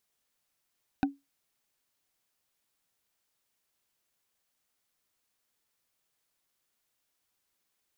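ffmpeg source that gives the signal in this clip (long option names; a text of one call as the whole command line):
ffmpeg -f lavfi -i "aevalsrc='0.106*pow(10,-3*t/0.2)*sin(2*PI*279*t)+0.0668*pow(10,-3*t/0.059)*sin(2*PI*769.2*t)+0.0422*pow(10,-3*t/0.026)*sin(2*PI*1507.7*t)+0.0266*pow(10,-3*t/0.014)*sin(2*PI*2492.3*t)+0.0168*pow(10,-3*t/0.009)*sin(2*PI*3721.9*t)':duration=0.45:sample_rate=44100" out.wav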